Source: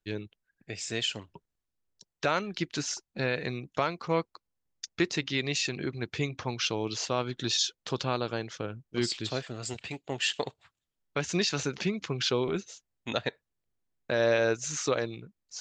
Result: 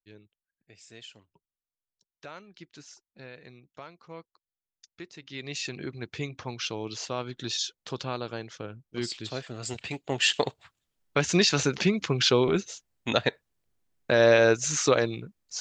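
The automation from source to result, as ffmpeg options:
ffmpeg -i in.wav -af "volume=6dB,afade=type=in:start_time=5.2:duration=0.48:silence=0.223872,afade=type=in:start_time=9.29:duration=1.08:silence=0.354813" out.wav

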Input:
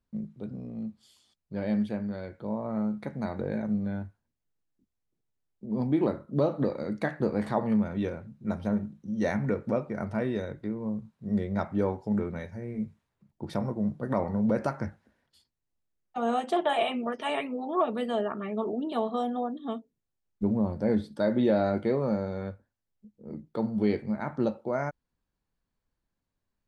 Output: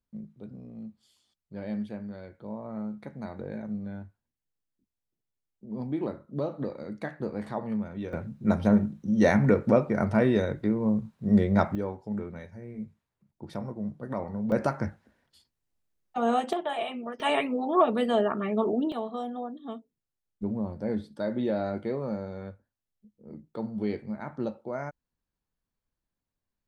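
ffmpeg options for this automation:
ffmpeg -i in.wav -af "asetnsamples=nb_out_samples=441:pad=0,asendcmd='8.13 volume volume 7dB;11.75 volume volume -5dB;14.52 volume volume 2.5dB;16.53 volume volume -5dB;17.2 volume volume 4.5dB;18.92 volume volume -4.5dB',volume=-5.5dB" out.wav

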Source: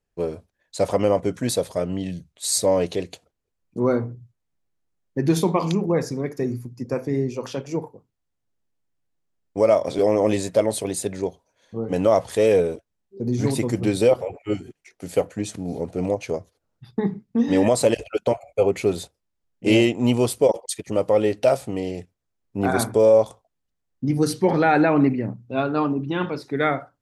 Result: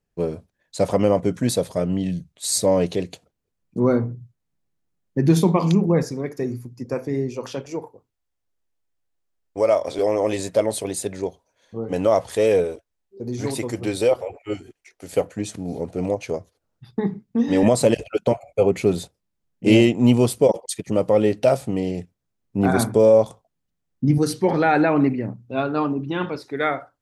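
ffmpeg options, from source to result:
ffmpeg -i in.wav -af "asetnsamples=nb_out_samples=441:pad=0,asendcmd='6.03 equalizer g -2;7.66 equalizer g -9;10.39 equalizer g -2.5;12.64 equalizer g -9;15.13 equalizer g 0;17.63 equalizer g 7;24.18 equalizer g -1;26.36 equalizer g -8.5',equalizer=frequency=170:width_type=o:width=1.4:gain=6" out.wav

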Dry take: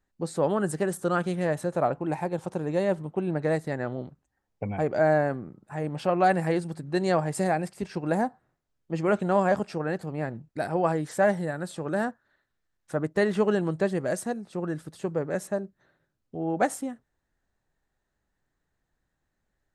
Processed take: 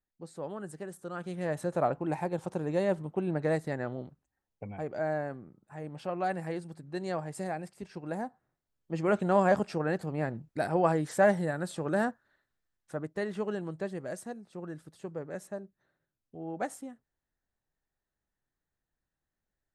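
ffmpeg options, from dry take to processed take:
ffmpeg -i in.wav -af "volume=6dB,afade=type=in:start_time=1.14:duration=0.57:silence=0.281838,afade=type=out:start_time=3.65:duration=1.02:silence=0.446684,afade=type=in:start_time=8.25:duration=1.26:silence=0.354813,afade=type=out:start_time=12.09:duration=1.04:silence=0.354813" out.wav

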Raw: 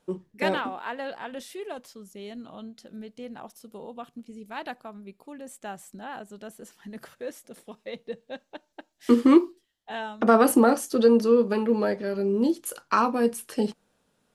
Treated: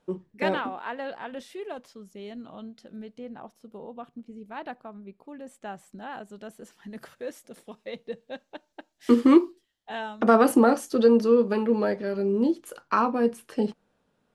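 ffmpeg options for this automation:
ffmpeg -i in.wav -af "asetnsamples=nb_out_samples=441:pad=0,asendcmd='3.19 lowpass f 1500;5.34 lowpass f 2700;6 lowpass f 5300;6.92 lowpass f 8900;10.36 lowpass f 5100;12.44 lowpass f 2300',lowpass=frequency=3400:poles=1" out.wav

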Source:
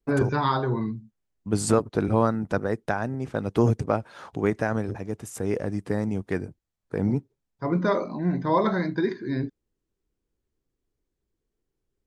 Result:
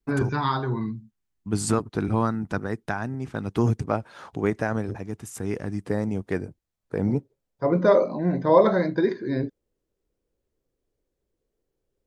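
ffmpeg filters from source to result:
ffmpeg -i in.wav -af "asetnsamples=nb_out_samples=441:pad=0,asendcmd='3.91 equalizer g -1;5.03 equalizer g -8.5;5.84 equalizer g 2;7.15 equalizer g 10.5',equalizer=frequency=540:width_type=o:width=0.7:gain=-8" out.wav

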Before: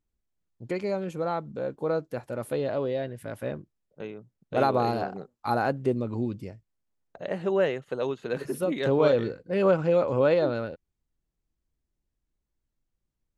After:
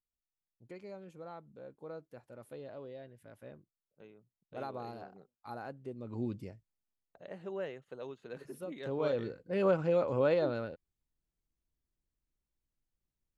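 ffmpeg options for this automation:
ffmpeg -i in.wav -af "volume=3dB,afade=type=in:start_time=5.97:duration=0.33:silence=0.237137,afade=type=out:start_time=6.3:duration=0.92:silence=0.334965,afade=type=in:start_time=8.82:duration=0.74:silence=0.375837" out.wav

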